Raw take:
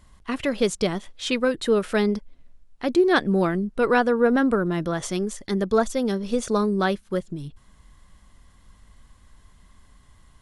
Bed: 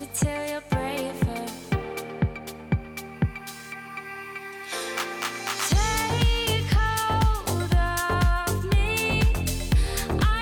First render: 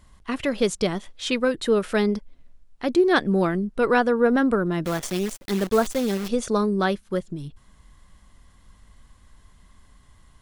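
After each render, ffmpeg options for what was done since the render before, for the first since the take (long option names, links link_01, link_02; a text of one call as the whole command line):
ffmpeg -i in.wav -filter_complex "[0:a]asplit=3[link_01][link_02][link_03];[link_01]afade=type=out:start_time=4.84:duration=0.02[link_04];[link_02]acrusher=bits=6:dc=4:mix=0:aa=0.000001,afade=type=in:start_time=4.84:duration=0.02,afade=type=out:start_time=6.27:duration=0.02[link_05];[link_03]afade=type=in:start_time=6.27:duration=0.02[link_06];[link_04][link_05][link_06]amix=inputs=3:normalize=0" out.wav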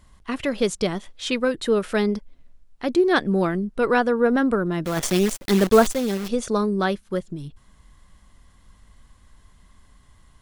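ffmpeg -i in.wav -filter_complex "[0:a]asplit=3[link_01][link_02][link_03];[link_01]afade=type=out:start_time=4.96:duration=0.02[link_04];[link_02]acontrast=59,afade=type=in:start_time=4.96:duration=0.02,afade=type=out:start_time=5.91:duration=0.02[link_05];[link_03]afade=type=in:start_time=5.91:duration=0.02[link_06];[link_04][link_05][link_06]amix=inputs=3:normalize=0" out.wav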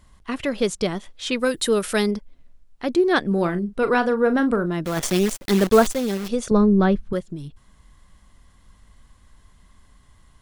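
ffmpeg -i in.wav -filter_complex "[0:a]asettb=1/sr,asplit=3[link_01][link_02][link_03];[link_01]atrim=end=1.394[link_04];[link_02]atrim=start=1.39:end=2.11,asetpts=PTS-STARTPTS,afade=type=in:duration=0.004:curve=qsin,afade=type=out:start_time=0.716:duration=0.004:curve=qsin,aemphasis=mode=production:type=75kf[link_05];[link_03]atrim=start=2.106[link_06];[link_04][link_05]acrossfade=duration=0.004:curve1=hsin:curve2=qsin[link_07];[link_07][link_06]acrossfade=duration=0.004:curve1=qsin:curve2=hsin,asettb=1/sr,asplit=3[link_08][link_09][link_10];[link_08]atrim=end=3.274[link_11];[link_09]atrim=start=3.27:end=4.66,asetpts=PTS-STARTPTS,afade=type=in:duration=0.004:curve=qsin,afade=type=out:start_time=1.386:duration=0.004:curve=qsin,asplit=2[link_12][link_13];[link_13]adelay=40,volume=-11.5dB[link_14];[link_12][link_14]amix=inputs=2:normalize=0,atrim=end_sample=61299[link_15];[link_10]atrim=start=4.656[link_16];[link_11][link_15]acrossfade=duration=0.004:curve1=hsin:curve2=qsin[link_17];[link_17][link_16]acrossfade=duration=0.004:curve1=qsin:curve2=hsin,asettb=1/sr,asplit=3[link_18][link_19][link_20];[link_18]atrim=end=6.514[link_21];[link_19]atrim=start=6.51:end=7.13,asetpts=PTS-STARTPTS,afade=type=in:duration=0.004:curve=qsin,afade=type=out:start_time=0.616:duration=0.004:curve=qsin,aemphasis=mode=reproduction:type=riaa[link_22];[link_20]atrim=start=7.126[link_23];[link_21][link_22]acrossfade=duration=0.004:curve1=hsin:curve2=qsin[link_24];[link_24][link_23]acrossfade=duration=0.004:curve1=qsin:curve2=hsin" out.wav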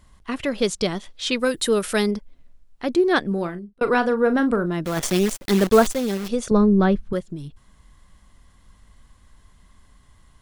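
ffmpeg -i in.wav -filter_complex "[0:a]asettb=1/sr,asplit=3[link_01][link_02][link_03];[link_01]atrim=end=0.624[link_04];[link_02]atrim=start=0.62:end=1.38,asetpts=PTS-STARTPTS,afade=type=in:duration=0.004:curve=qsin,afade=type=out:start_time=0.756:duration=0.004:curve=qsin,equalizer=frequency=4400:width_type=o:width=1.2:gain=4.5[link_05];[link_03]atrim=start=1.376[link_06];[link_04][link_05]acrossfade=duration=0.004:curve1=hsin:curve2=qsin[link_07];[link_07][link_06]acrossfade=duration=0.004:curve1=qsin:curve2=hsin,asplit=2[link_08][link_09];[link_08]atrim=end=3.81,asetpts=PTS-STARTPTS,afade=type=out:start_time=3.16:duration=0.65[link_10];[link_09]atrim=start=3.81,asetpts=PTS-STARTPTS,afade=type=in:duration=0.004:curve=hsin[link_11];[link_10][link_11]concat=n=2:v=0:a=1" out.wav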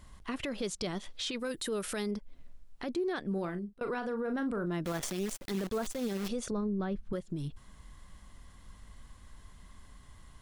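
ffmpeg -i in.wav -af "acompressor=threshold=-32dB:ratio=3,alimiter=level_in=2.5dB:limit=-24dB:level=0:latency=1:release=19,volume=-2.5dB" out.wav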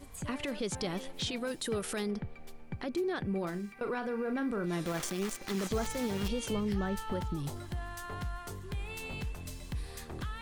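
ffmpeg -i in.wav -i bed.wav -filter_complex "[1:a]volume=-17dB[link_01];[0:a][link_01]amix=inputs=2:normalize=0" out.wav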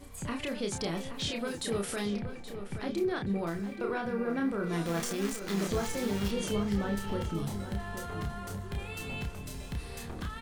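ffmpeg -i in.wav -filter_complex "[0:a]asplit=2[link_01][link_02];[link_02]adelay=30,volume=-4dB[link_03];[link_01][link_03]amix=inputs=2:normalize=0,asplit=2[link_04][link_05];[link_05]adelay=825,lowpass=frequency=3200:poles=1,volume=-9.5dB,asplit=2[link_06][link_07];[link_07]adelay=825,lowpass=frequency=3200:poles=1,volume=0.47,asplit=2[link_08][link_09];[link_09]adelay=825,lowpass=frequency=3200:poles=1,volume=0.47,asplit=2[link_10][link_11];[link_11]adelay=825,lowpass=frequency=3200:poles=1,volume=0.47,asplit=2[link_12][link_13];[link_13]adelay=825,lowpass=frequency=3200:poles=1,volume=0.47[link_14];[link_04][link_06][link_08][link_10][link_12][link_14]amix=inputs=6:normalize=0" out.wav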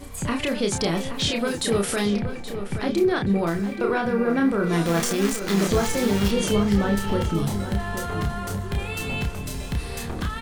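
ffmpeg -i in.wav -af "volume=10dB" out.wav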